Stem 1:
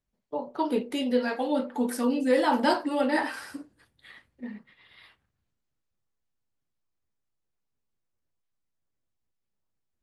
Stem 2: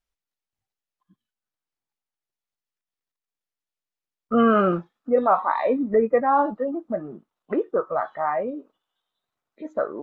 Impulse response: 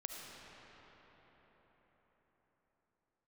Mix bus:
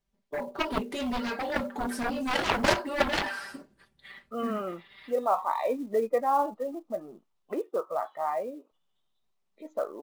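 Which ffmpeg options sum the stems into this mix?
-filter_complex "[0:a]aecho=1:1:5.1:0.78,aeval=exprs='0.355*(cos(1*acos(clip(val(0)/0.355,-1,1)))-cos(1*PI/2))+0.126*(cos(7*acos(clip(val(0)/0.355,-1,1)))-cos(7*PI/2))':c=same,volume=-3dB,asplit=3[a][b][c];[a]atrim=end=7.57,asetpts=PTS-STARTPTS,afade=t=out:st=7.566:d=0.004:c=hsin[d];[b]atrim=start=7.57:end=8.71,asetpts=PTS-STARTPTS,volume=0[e];[c]atrim=start=8.71,asetpts=PTS-STARTPTS,afade=t=in:d=0.004:c=hsin[f];[d][e][f]concat=n=3:v=0:a=1,asplit=2[g][h];[1:a]highpass=f=810:p=1,equalizer=f=1.6k:w=2.1:g=-12,volume=-0.5dB[i];[h]apad=whole_len=442018[j];[i][j]sidechaincompress=threshold=-40dB:ratio=4:attack=22:release=1330[k];[g][k]amix=inputs=2:normalize=0,highshelf=f=10k:g=-11.5,acrusher=bits=7:mode=log:mix=0:aa=0.000001"

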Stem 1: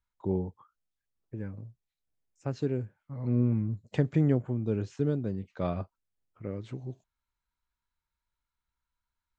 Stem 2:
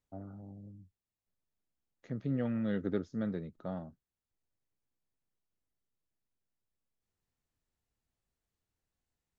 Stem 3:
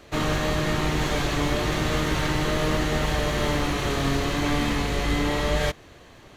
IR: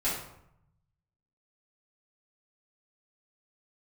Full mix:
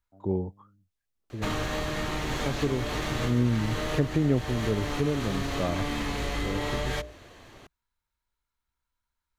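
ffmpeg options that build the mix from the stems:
-filter_complex "[0:a]volume=2dB,asplit=2[a][b];[1:a]lowpass=1.2k,volume=-11.5dB[c];[2:a]bandreject=f=60:t=h:w=6,bandreject=f=120:t=h:w=6,bandreject=f=180:t=h:w=6,bandreject=f=240:t=h:w=6,bandreject=f=300:t=h:w=6,bandreject=f=360:t=h:w=6,bandreject=f=420:t=h:w=6,bandreject=f=480:t=h:w=6,bandreject=f=540:t=h:w=6,bandreject=f=600:t=h:w=6,acompressor=threshold=-25dB:ratio=6,adelay=1300,volume=-1dB[d];[b]apad=whole_len=338140[e];[d][e]sidechaincompress=threshold=-26dB:ratio=5:attack=16:release=298[f];[a][c][f]amix=inputs=3:normalize=0,equalizer=f=160:t=o:w=0.25:g=-6"

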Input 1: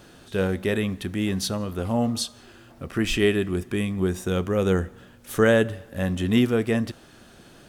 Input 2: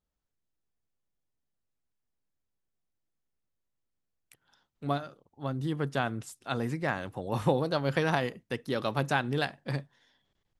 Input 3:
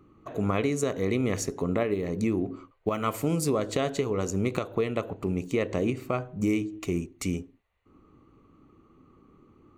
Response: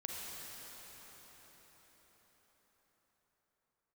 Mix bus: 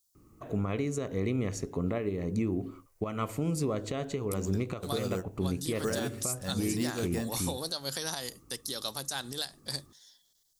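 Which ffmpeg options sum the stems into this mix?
-filter_complex "[0:a]acrusher=samples=6:mix=1:aa=0.000001,adelay=450,volume=-11dB[a];[1:a]lowshelf=f=350:g=-6,bandreject=f=50:t=h:w=6,bandreject=f=100:t=h:w=6,bandreject=f=150:t=h:w=6,aexciter=amount=11.8:drive=7:freq=3.9k,volume=-4.5dB,asplit=2[b][c];[2:a]lowpass=12k,lowshelf=f=180:g=8.5,adelay=150,volume=-5.5dB[d];[c]apad=whole_len=358829[e];[a][e]sidechaingate=range=-33dB:threshold=-56dB:ratio=16:detection=peak[f];[f][b][d]amix=inputs=3:normalize=0,alimiter=limit=-21dB:level=0:latency=1:release=205"

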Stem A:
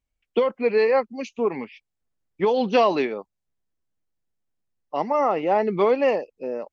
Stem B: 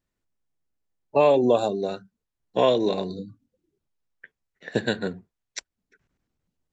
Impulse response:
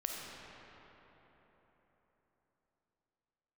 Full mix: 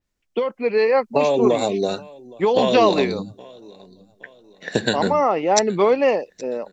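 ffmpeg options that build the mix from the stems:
-filter_complex "[0:a]volume=-2.5dB[a];[1:a]equalizer=f=5.7k:t=o:w=1.1:g=6,acompressor=threshold=-22dB:ratio=6,volume=1.5dB,asplit=2[b][c];[c]volume=-22.5dB,aecho=0:1:820|1640|2460|3280|4100:1|0.39|0.152|0.0593|0.0231[d];[a][b][d]amix=inputs=3:normalize=0,dynaudnorm=f=290:g=5:m=6dB,adynamicequalizer=threshold=0.01:dfrequency=4400:dqfactor=0.7:tfrequency=4400:tqfactor=0.7:attack=5:release=100:ratio=0.375:range=2:mode=boostabove:tftype=highshelf"

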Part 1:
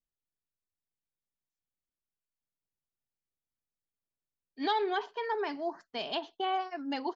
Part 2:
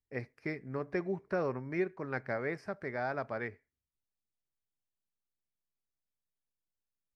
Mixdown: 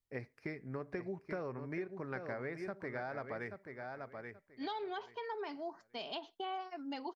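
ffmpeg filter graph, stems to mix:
-filter_complex "[0:a]bandreject=f=1.7k:w=11,volume=-5.5dB[a];[1:a]volume=-1dB,asplit=2[b][c];[c]volume=-9dB,aecho=0:1:831|1662|2493:1|0.2|0.04[d];[a][b][d]amix=inputs=3:normalize=0,acompressor=threshold=-38dB:ratio=4"

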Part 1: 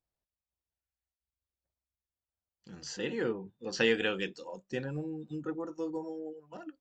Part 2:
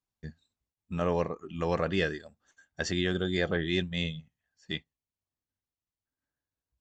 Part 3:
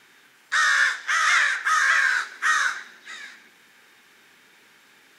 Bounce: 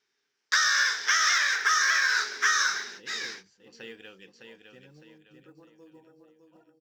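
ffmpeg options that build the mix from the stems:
-filter_complex "[0:a]adynamicequalizer=threshold=0.00631:dfrequency=1800:dqfactor=0.7:tfrequency=1800:tqfactor=0.7:attack=5:release=100:ratio=0.375:range=2:mode=boostabove:tftype=highshelf,volume=-18dB,asplit=2[a][b];[b]volume=-6dB[c];[2:a]agate=range=-29dB:threshold=-47dB:ratio=16:detection=peak,lowpass=f=5.5k:t=q:w=5,equalizer=f=420:w=5.8:g=12.5,volume=2dB[d];[c]aecho=0:1:608|1216|1824|2432|3040:1|0.38|0.144|0.0549|0.0209[e];[a][d][e]amix=inputs=3:normalize=0,acrusher=bits=8:mode=log:mix=0:aa=0.000001,acompressor=threshold=-20dB:ratio=12"

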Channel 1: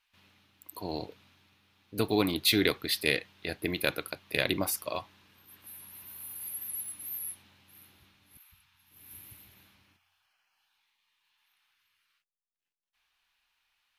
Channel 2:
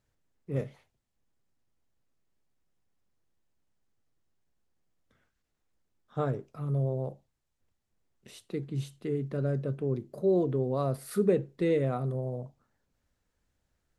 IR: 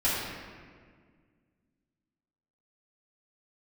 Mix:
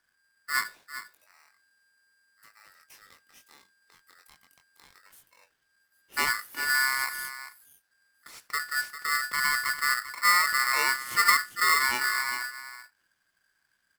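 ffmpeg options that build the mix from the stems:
-filter_complex "[0:a]flanger=delay=19.5:depth=2.6:speed=0.38,highshelf=f=6.5k:g=9,acompressor=threshold=-36dB:ratio=2,adelay=450,volume=-5dB[a];[1:a]volume=3dB,asplit=3[b][c][d];[c]volume=-12dB[e];[d]apad=whole_len=636704[f];[a][f]sidechaingate=range=-16dB:threshold=-55dB:ratio=16:detection=peak[g];[e]aecho=0:1:397:1[h];[g][b][h]amix=inputs=3:normalize=0,aeval=exprs='val(0)*sgn(sin(2*PI*1600*n/s))':c=same"

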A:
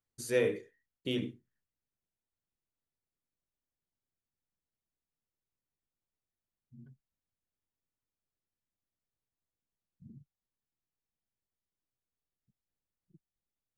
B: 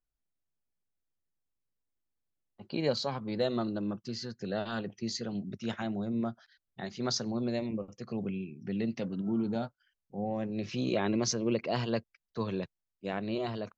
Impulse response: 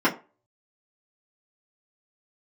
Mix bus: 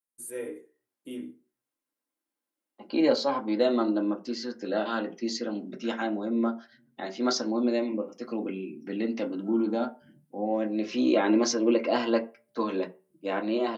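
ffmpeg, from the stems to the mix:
-filter_complex "[0:a]highshelf=f=7k:t=q:w=3:g=12.5,flanger=delay=1.7:depth=7.7:regen=-62:speed=0.19:shape=sinusoidal,volume=-2.5dB,afade=t=in:st=7.88:d=0.39:silence=0.398107,asplit=2[a][b];[b]volume=-12dB[c];[1:a]highpass=260,adelay=200,volume=1dB,asplit=2[d][e];[e]volume=-14dB[f];[2:a]atrim=start_sample=2205[g];[c][f]amix=inputs=2:normalize=0[h];[h][g]afir=irnorm=-1:irlink=0[i];[a][d][i]amix=inputs=3:normalize=0,lowshelf=f=88:g=-11.5"

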